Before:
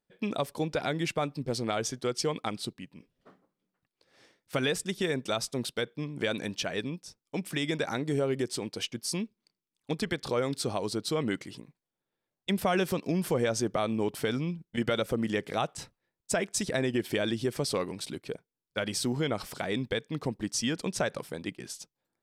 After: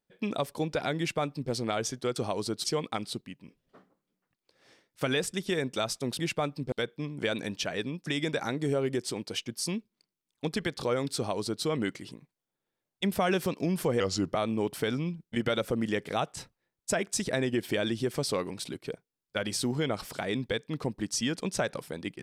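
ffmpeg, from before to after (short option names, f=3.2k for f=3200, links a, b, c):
-filter_complex "[0:a]asplit=8[a][b][c][d][e][f][g][h];[a]atrim=end=2.162[i];[b]atrim=start=10.618:end=11.102[j];[c]atrim=start=2.158:end=5.712[k];[d]atrim=start=0.978:end=1.512[l];[e]atrim=start=5.708:end=7.052[m];[f]atrim=start=7.518:end=13.464[n];[g]atrim=start=13.46:end=13.73,asetpts=PTS-STARTPTS,asetrate=37485,aresample=44100,atrim=end_sample=14008,asetpts=PTS-STARTPTS[o];[h]atrim=start=13.726[p];[i][j]acrossfade=d=0.004:c1=hsin:c2=hsin[q];[q][k]acrossfade=d=0.004:c1=hsin:c2=hsin[r];[r][l]acrossfade=d=0.004:c1=hsin:c2=hsin[s];[s][m]acrossfade=d=0.004:c1=hsin:c2=hsin[t];[t][n]acrossfade=d=0.004:c1=hsin:c2=hsin[u];[u][o]acrossfade=d=0.004:c1=hsin:c2=hsin[v];[v][p]acrossfade=d=0.004:c1=hsin:c2=hsin"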